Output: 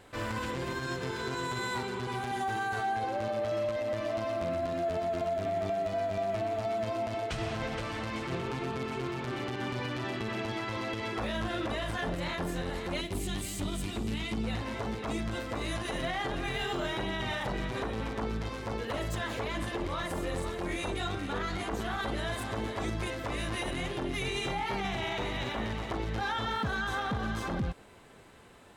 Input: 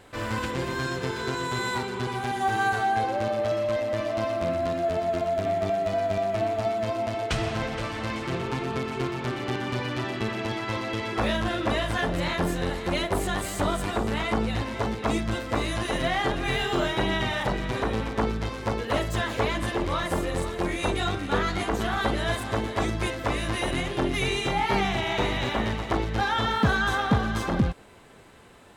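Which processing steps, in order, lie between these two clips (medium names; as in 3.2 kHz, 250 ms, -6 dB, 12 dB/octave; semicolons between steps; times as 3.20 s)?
13.01–14.44 s: high-order bell 900 Hz -11.5 dB 2.3 oct; peak limiter -21 dBFS, peak gain reduction 9.5 dB; trim -3.5 dB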